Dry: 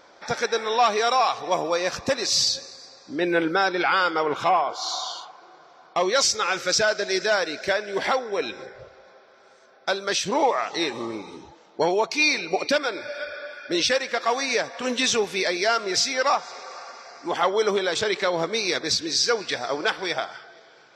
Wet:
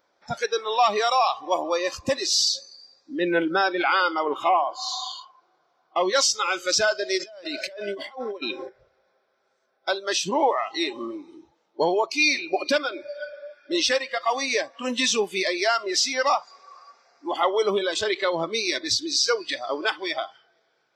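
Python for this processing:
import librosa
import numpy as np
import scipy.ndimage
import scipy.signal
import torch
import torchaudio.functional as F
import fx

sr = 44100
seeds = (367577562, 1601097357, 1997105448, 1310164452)

y = fx.over_compress(x, sr, threshold_db=-33.0, ratio=-1.0, at=(7.17, 8.68), fade=0.02)
y = fx.noise_reduce_blind(y, sr, reduce_db=17)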